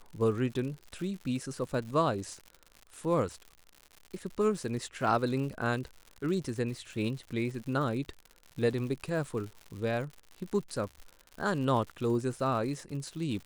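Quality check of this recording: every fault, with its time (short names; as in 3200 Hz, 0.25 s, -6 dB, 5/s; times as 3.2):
crackle 120/s -39 dBFS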